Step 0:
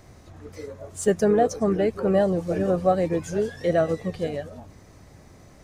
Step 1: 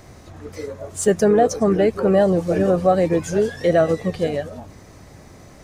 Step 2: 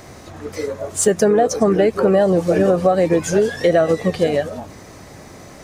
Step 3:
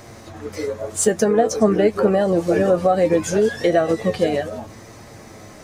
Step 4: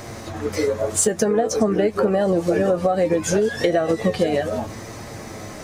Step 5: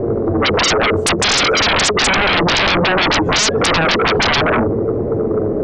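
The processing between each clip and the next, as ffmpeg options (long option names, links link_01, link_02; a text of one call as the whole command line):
ffmpeg -i in.wav -filter_complex "[0:a]lowshelf=frequency=140:gain=-3,asplit=2[link_01][link_02];[link_02]alimiter=limit=-16.5dB:level=0:latency=1,volume=1.5dB[link_03];[link_01][link_03]amix=inputs=2:normalize=0" out.wav
ffmpeg -i in.wav -af "lowshelf=frequency=130:gain=-9,acompressor=threshold=-18dB:ratio=6,volume=7dB" out.wav
ffmpeg -i in.wav -af "flanger=delay=8.6:depth=1.1:regen=49:speed=0.8:shape=triangular,volume=2.5dB" out.wav
ffmpeg -i in.wav -af "acompressor=threshold=-22dB:ratio=6,volume=6dB" out.wav
ffmpeg -i in.wav -af "lowpass=frequency=430:width_type=q:width=4.9,aeval=exprs='0.668*sin(PI/2*7.94*val(0)/0.668)':channel_layout=same,volume=-7.5dB" out.wav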